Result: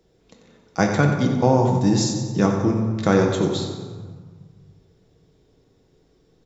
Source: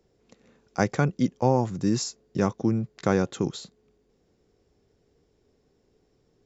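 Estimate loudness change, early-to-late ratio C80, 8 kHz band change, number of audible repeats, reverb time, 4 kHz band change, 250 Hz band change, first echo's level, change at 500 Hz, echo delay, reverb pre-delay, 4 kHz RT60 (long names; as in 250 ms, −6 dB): +6.0 dB, 5.0 dB, can't be measured, 2, 1.7 s, +7.5 dB, +6.0 dB, −10.0 dB, +6.0 dB, 91 ms, 6 ms, 1.0 s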